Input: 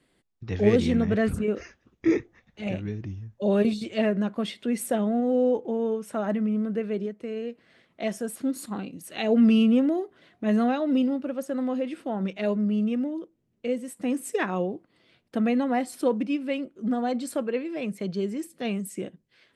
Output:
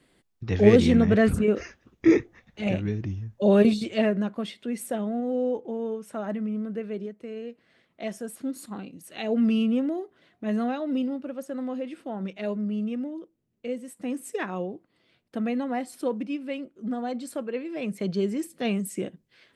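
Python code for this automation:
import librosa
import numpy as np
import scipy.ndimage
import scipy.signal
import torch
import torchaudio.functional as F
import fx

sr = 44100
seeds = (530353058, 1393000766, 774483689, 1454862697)

y = fx.gain(x, sr, db=fx.line((3.72, 4.0), (4.55, -4.0), (17.47, -4.0), (18.09, 2.5)))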